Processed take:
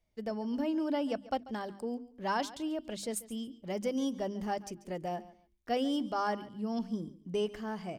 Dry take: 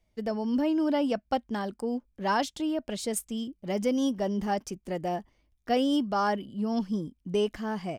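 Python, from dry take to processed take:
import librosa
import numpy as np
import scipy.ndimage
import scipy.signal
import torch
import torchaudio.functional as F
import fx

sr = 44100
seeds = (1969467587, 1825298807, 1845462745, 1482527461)

p1 = fx.hum_notches(x, sr, base_hz=50, count=7)
p2 = p1 + fx.echo_feedback(p1, sr, ms=140, feedback_pct=21, wet_db=-18.0, dry=0)
y = p2 * librosa.db_to_amplitude(-5.5)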